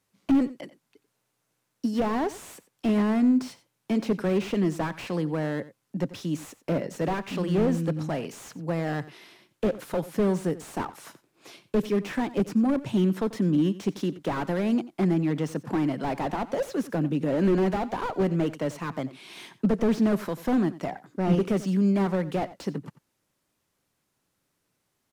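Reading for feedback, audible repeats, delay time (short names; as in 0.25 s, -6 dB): no steady repeat, 1, 90 ms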